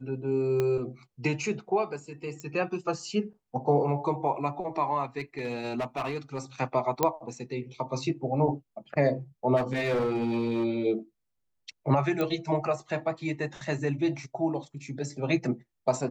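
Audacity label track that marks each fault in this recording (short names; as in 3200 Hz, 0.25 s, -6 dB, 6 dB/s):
0.600000	0.600000	pop -15 dBFS
2.400000	2.400000	pop -25 dBFS
5.190000	6.390000	clipped -26.5 dBFS
7.030000	7.030000	pop -9 dBFS
9.560000	10.650000	clipped -23.5 dBFS
12.210000	12.210000	pop -16 dBFS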